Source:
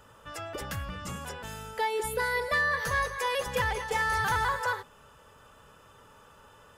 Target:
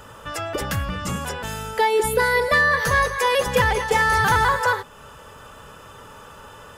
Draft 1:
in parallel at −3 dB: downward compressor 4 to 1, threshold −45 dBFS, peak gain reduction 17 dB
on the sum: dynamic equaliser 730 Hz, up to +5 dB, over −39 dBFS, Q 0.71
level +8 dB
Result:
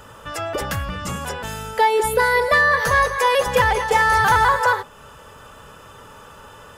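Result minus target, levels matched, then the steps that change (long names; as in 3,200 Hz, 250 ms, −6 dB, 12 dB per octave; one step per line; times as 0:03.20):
250 Hz band −4.0 dB
change: dynamic equaliser 240 Hz, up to +5 dB, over −39 dBFS, Q 0.71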